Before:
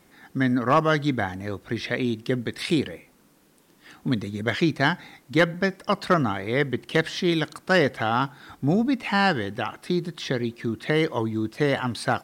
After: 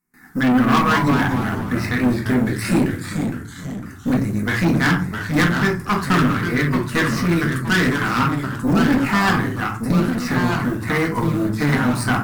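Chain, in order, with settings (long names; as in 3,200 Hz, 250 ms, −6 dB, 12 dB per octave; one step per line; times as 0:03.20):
mu-law and A-law mismatch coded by A
phaser with its sweep stopped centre 1,400 Hz, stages 4
rectangular room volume 240 cubic metres, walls furnished, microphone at 1.9 metres
tube saturation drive 22 dB, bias 0.5
noise gate with hold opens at −53 dBFS
high-shelf EQ 8,500 Hz +7.5 dB
delay with pitch and tempo change per echo 111 ms, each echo −2 semitones, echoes 3, each echo −6 dB
0:06.18–0:08.20: parametric band 790 Hz −8.5 dB 0.46 octaves
level +9 dB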